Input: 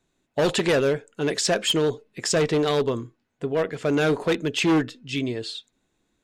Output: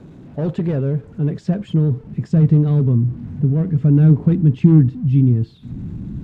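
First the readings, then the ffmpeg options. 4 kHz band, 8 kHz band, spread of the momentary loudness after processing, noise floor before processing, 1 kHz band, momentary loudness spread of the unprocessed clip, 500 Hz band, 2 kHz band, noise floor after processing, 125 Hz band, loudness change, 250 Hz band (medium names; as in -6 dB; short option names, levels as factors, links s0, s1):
under -20 dB, under -25 dB, 13 LU, -74 dBFS, under -10 dB, 11 LU, -5.0 dB, under -15 dB, -43 dBFS, +19.0 dB, +7.5 dB, +9.0 dB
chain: -af "aeval=exprs='val(0)+0.5*0.0224*sgn(val(0))':c=same,asubboost=boost=10.5:cutoff=160,bandpass=f=160:t=q:w=1.2:csg=0,volume=2.11"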